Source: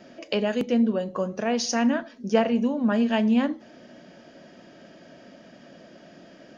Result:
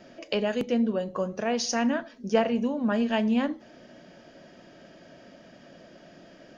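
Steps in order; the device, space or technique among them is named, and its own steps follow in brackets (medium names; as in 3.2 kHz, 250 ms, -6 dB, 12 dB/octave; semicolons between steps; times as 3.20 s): low shelf boost with a cut just above (bass shelf 71 Hz +8 dB; peaking EQ 230 Hz -3 dB 0.77 oct); trim -1.5 dB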